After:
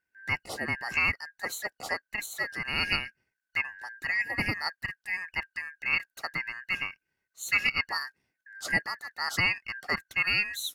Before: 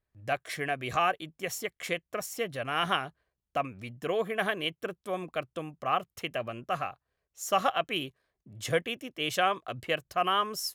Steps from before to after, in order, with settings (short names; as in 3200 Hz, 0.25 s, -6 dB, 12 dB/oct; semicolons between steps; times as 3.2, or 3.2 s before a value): four-band scrambler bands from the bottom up 2143